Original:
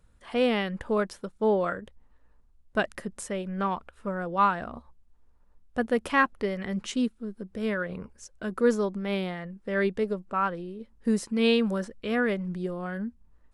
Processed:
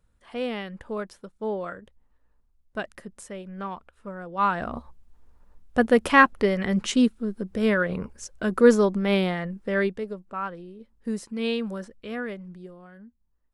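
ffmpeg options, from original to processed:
-af "volume=7dB,afade=t=in:st=4.34:d=0.4:silence=0.237137,afade=t=out:st=9.51:d=0.5:silence=0.266073,afade=t=out:st=11.95:d=0.94:silence=0.316228"

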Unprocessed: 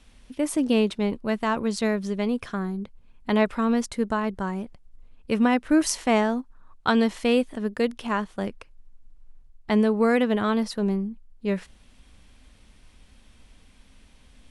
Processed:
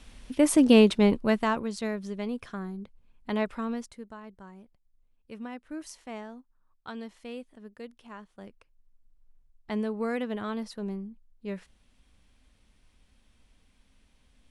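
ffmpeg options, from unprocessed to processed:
-af "volume=13dB,afade=t=out:st=1.12:d=0.56:silence=0.266073,afade=t=out:st=3.54:d=0.5:silence=0.266073,afade=t=in:st=8.18:d=1.57:silence=0.354813"

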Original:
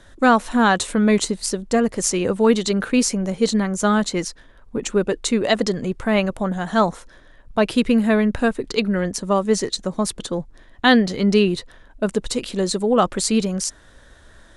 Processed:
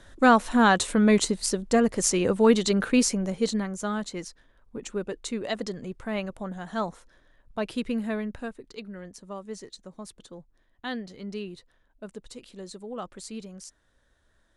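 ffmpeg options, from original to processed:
-af "volume=-3dB,afade=t=out:st=2.91:d=0.95:silence=0.354813,afade=t=out:st=8.03:d=0.62:silence=0.421697"

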